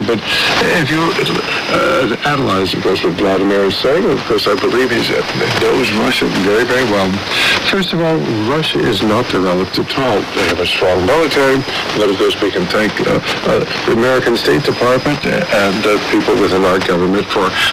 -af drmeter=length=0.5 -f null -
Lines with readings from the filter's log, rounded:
Channel 1: DR: 5.5
Overall DR: 5.5